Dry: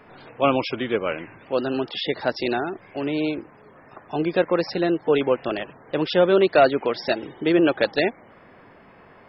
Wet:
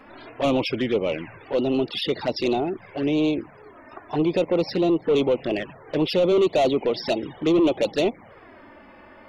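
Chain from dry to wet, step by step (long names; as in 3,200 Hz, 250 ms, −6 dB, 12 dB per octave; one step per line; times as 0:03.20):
dynamic equaliser 1,500 Hz, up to −5 dB, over −39 dBFS, Q 1.5
soft clipping −19.5 dBFS, distortion −9 dB
flanger swept by the level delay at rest 4.1 ms, full sweep at −23.5 dBFS
level +5.5 dB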